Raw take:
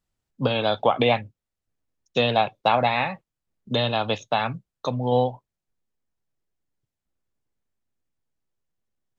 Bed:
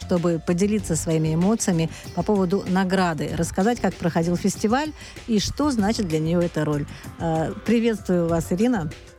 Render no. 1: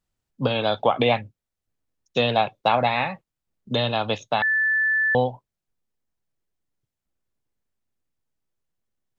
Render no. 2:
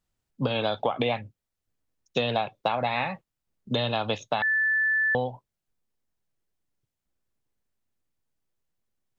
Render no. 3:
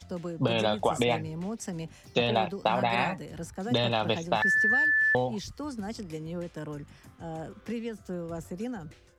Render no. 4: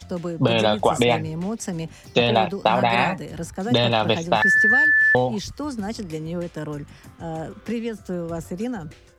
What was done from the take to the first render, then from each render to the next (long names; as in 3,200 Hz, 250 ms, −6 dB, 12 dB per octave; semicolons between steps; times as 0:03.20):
0:04.42–0:05.15: beep over 1,750 Hz −18 dBFS
downward compressor 6 to 1, threshold −22 dBFS, peak gain reduction 8.5 dB
mix in bed −15 dB
level +7.5 dB